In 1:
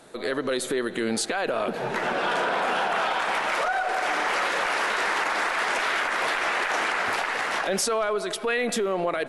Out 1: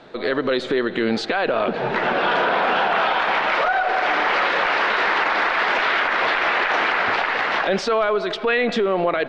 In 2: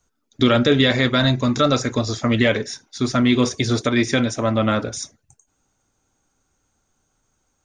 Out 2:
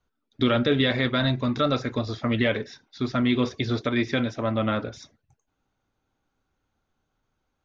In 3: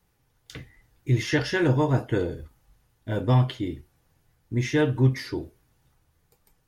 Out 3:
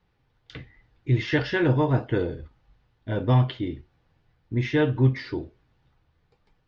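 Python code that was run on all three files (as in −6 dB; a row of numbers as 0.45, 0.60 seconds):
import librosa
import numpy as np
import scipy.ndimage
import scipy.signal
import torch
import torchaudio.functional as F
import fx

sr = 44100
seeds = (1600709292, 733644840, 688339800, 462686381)

y = scipy.signal.sosfilt(scipy.signal.butter(4, 4300.0, 'lowpass', fs=sr, output='sos'), x)
y = librosa.util.normalize(y) * 10.0 ** (-9 / 20.0)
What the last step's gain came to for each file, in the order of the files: +6.0, −6.0, +0.5 decibels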